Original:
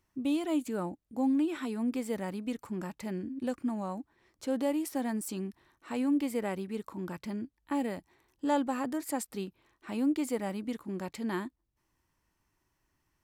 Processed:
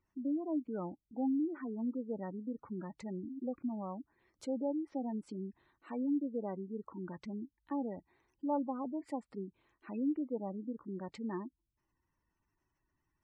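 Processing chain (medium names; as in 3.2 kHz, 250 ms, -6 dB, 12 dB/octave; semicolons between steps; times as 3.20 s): low-pass that closes with the level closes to 1.3 kHz, closed at -28.5 dBFS; spectral gate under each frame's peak -20 dB strong; trim -5 dB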